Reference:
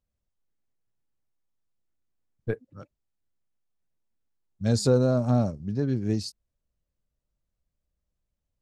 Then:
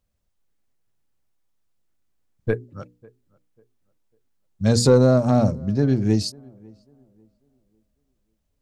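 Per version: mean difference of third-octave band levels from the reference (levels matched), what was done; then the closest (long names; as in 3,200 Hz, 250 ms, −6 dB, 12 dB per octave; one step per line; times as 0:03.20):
2.0 dB: mains-hum notches 60/120/180/240/300/360/420/480 Hz
soft clipping −12 dBFS, distortion −22 dB
on a send: tape delay 546 ms, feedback 36%, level −24 dB, low-pass 1,100 Hz
on the sum: level +8 dB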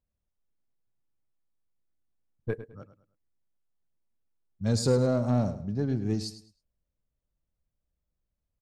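3.0 dB: in parallel at −8 dB: hard clipping −24 dBFS, distortion −7 dB
on the sum: repeating echo 105 ms, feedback 31%, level −12.5 dB
one half of a high-frequency compander decoder only
level −4.5 dB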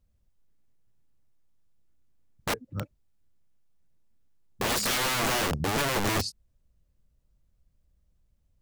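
18.5 dB: low-shelf EQ 250 Hz +9.5 dB
in parallel at −3 dB: downward compressor 6 to 1, threshold −29 dBFS, peak gain reduction 16 dB
on the sum: wrap-around overflow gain 22 dB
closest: first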